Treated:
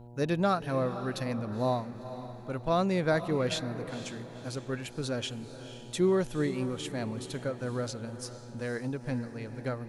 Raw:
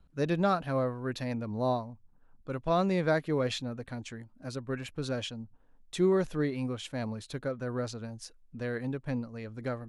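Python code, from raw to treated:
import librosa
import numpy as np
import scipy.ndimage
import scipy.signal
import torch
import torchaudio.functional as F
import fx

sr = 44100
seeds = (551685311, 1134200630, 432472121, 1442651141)

y = fx.high_shelf(x, sr, hz=7300.0, db=8.5)
y = fx.dmg_buzz(y, sr, base_hz=120.0, harmonics=8, level_db=-49.0, tilt_db=-6, odd_only=False)
y = fx.echo_diffused(y, sr, ms=489, feedback_pct=44, wet_db=-12.0)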